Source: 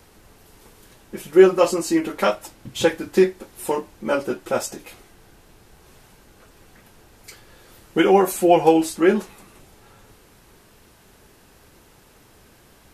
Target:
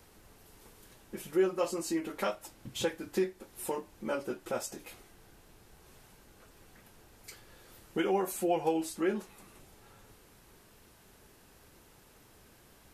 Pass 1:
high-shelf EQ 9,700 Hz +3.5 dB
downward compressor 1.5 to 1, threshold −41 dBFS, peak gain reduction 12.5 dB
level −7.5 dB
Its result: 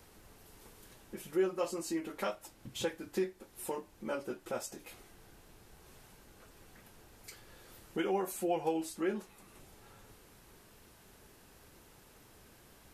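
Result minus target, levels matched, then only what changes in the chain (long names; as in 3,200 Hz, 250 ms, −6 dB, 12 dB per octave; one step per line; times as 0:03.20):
downward compressor: peak gain reduction +3.5 dB
change: downward compressor 1.5 to 1, threshold −31 dBFS, peak gain reduction 9 dB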